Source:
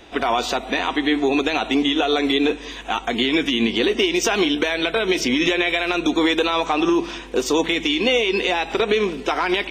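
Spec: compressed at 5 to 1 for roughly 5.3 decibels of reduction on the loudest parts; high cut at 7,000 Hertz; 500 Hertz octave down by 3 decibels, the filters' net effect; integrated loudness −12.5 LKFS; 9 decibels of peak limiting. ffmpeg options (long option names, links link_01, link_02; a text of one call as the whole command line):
ffmpeg -i in.wav -af "lowpass=7000,equalizer=frequency=500:width_type=o:gain=-4,acompressor=threshold=-22dB:ratio=5,volume=16dB,alimiter=limit=-2.5dB:level=0:latency=1" out.wav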